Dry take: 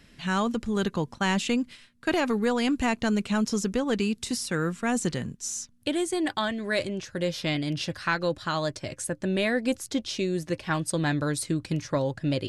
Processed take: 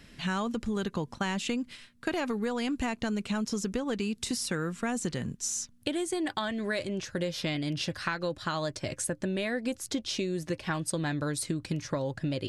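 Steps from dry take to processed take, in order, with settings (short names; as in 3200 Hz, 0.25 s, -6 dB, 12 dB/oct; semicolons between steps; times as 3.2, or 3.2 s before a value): compressor, threshold -30 dBFS, peak gain reduction 9.5 dB; gain +2 dB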